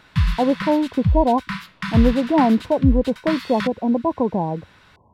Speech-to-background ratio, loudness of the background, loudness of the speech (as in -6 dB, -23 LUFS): 5.5 dB, -26.0 LUFS, -20.5 LUFS